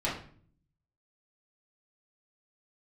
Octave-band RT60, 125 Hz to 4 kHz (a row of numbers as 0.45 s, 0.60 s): 0.95 s, 0.80 s, 0.55 s, 0.45 s, 0.45 s, 0.40 s